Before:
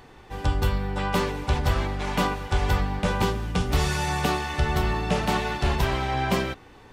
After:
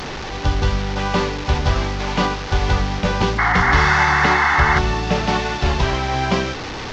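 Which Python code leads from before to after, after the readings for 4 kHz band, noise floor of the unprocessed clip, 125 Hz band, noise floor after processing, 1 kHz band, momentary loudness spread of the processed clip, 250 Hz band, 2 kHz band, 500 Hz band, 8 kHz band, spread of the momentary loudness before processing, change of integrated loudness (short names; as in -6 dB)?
+7.0 dB, -49 dBFS, +5.0 dB, -29 dBFS, +8.5 dB, 8 LU, +5.0 dB, +12.0 dB, +5.0 dB, +4.0 dB, 3 LU, +7.5 dB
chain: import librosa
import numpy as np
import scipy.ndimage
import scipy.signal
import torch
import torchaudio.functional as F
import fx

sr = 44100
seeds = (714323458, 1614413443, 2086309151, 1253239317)

y = fx.delta_mod(x, sr, bps=32000, step_db=-27.5)
y = fx.spec_paint(y, sr, seeds[0], shape='noise', start_s=3.38, length_s=1.41, low_hz=700.0, high_hz=2200.0, level_db=-22.0)
y = y * librosa.db_to_amplitude(5.0)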